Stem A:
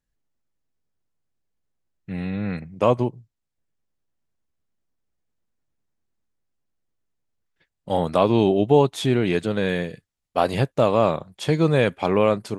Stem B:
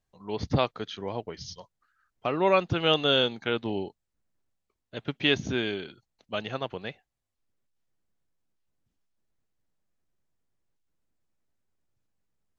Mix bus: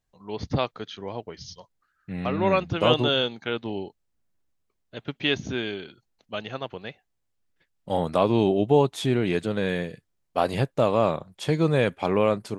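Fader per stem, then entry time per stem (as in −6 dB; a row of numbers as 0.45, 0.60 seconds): −3.0, −0.5 decibels; 0.00, 0.00 seconds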